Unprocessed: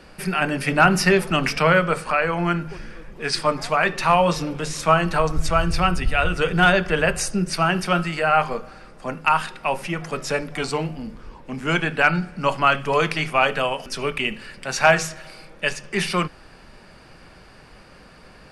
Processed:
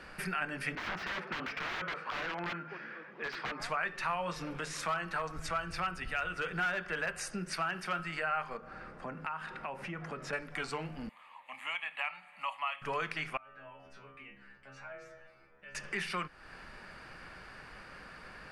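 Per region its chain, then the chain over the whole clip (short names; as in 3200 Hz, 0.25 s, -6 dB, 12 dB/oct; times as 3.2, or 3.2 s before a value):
0.75–3.6 Bessel high-pass 250 Hz, order 6 + wrapped overs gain 18.5 dB + air absorption 240 m
4.59–8 low shelf 94 Hz -9.5 dB + hard clip -12.5 dBFS
8.57–10.33 HPF 190 Hz 6 dB/oct + tilt -3 dB/oct + compressor 2:1, threshold -35 dBFS
11.09–12.82 HPF 830 Hz + fixed phaser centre 1500 Hz, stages 6
13.37–15.75 LPF 1100 Hz 6 dB/oct + compressor 4:1, threshold -33 dBFS + metallic resonator 66 Hz, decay 0.73 s, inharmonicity 0.002
whole clip: bell 1600 Hz +10 dB 1.5 oct; compressor 2.5:1, threshold -31 dBFS; gain -7.5 dB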